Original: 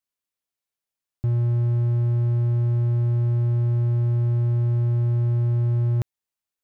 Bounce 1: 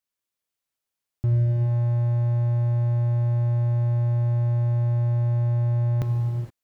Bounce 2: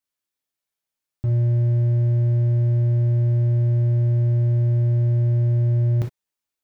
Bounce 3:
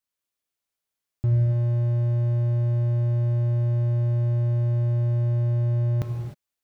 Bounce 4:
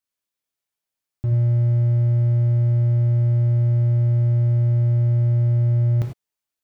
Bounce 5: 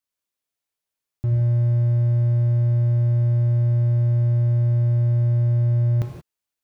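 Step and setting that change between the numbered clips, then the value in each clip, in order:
gated-style reverb, gate: 490 ms, 80 ms, 330 ms, 120 ms, 200 ms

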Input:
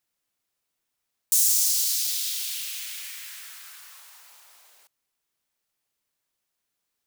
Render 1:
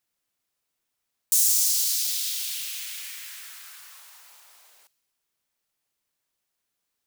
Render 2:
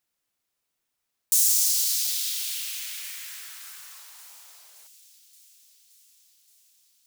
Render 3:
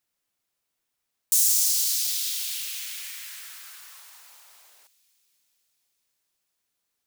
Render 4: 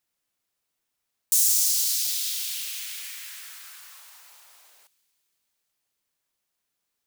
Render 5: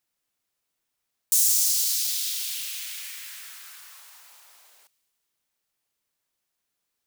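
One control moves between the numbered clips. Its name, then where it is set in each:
feedback echo behind a high-pass, time: 61 ms, 573 ms, 251 ms, 168 ms, 103 ms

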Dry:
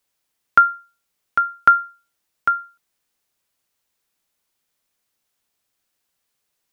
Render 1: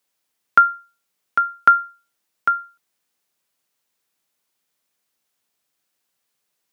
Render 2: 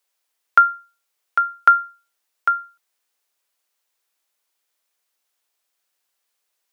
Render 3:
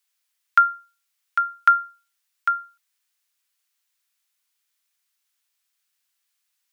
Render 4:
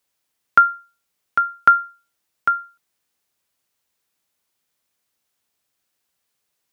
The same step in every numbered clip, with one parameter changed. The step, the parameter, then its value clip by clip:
high-pass, cutoff frequency: 120 Hz, 450 Hz, 1.4 kHz, 45 Hz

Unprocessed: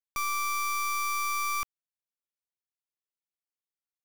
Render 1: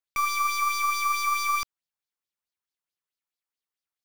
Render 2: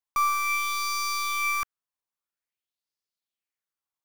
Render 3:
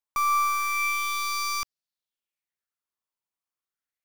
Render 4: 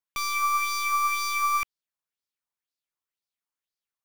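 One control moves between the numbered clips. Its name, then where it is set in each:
sweeping bell, rate: 4.6 Hz, 0.5 Hz, 0.31 Hz, 2 Hz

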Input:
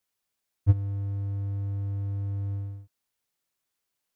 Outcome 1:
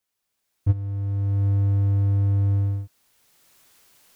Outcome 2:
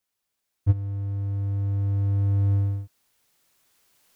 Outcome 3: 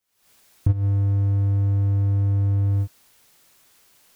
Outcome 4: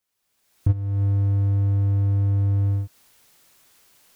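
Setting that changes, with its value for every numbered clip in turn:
recorder AGC, rising by: 14 dB/s, 5.6 dB/s, 85 dB/s, 34 dB/s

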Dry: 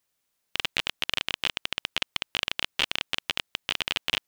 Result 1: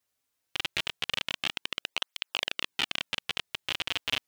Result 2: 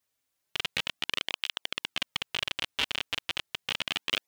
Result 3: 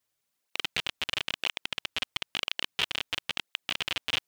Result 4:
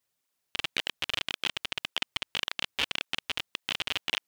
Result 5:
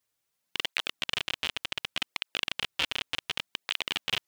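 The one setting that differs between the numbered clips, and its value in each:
cancelling through-zero flanger, nulls at: 0.23 Hz, 0.34 Hz, 0.99 Hz, 1.8 Hz, 0.67 Hz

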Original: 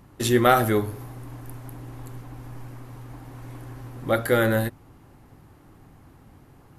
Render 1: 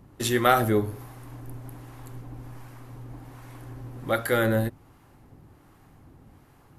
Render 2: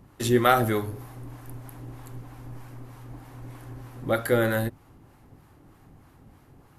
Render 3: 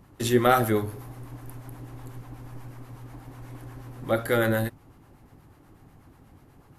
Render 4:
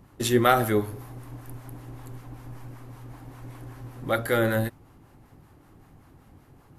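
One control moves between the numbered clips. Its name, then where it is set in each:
harmonic tremolo, rate: 1.3 Hz, 3.2 Hz, 8.2 Hz, 5.2 Hz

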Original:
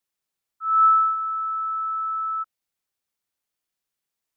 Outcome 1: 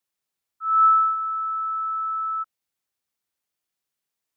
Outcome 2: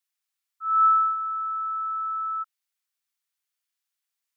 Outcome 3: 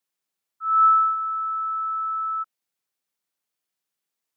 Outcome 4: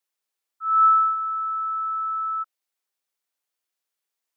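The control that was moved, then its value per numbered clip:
high-pass, cutoff frequency: 42 Hz, 1.2 kHz, 130 Hz, 350 Hz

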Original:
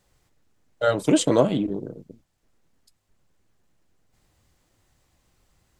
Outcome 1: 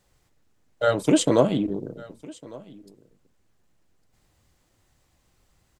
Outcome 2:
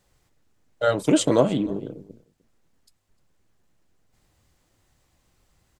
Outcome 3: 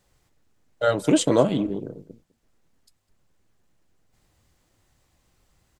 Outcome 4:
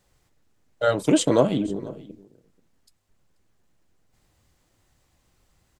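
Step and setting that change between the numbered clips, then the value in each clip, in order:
delay, time: 1154 ms, 303 ms, 204 ms, 484 ms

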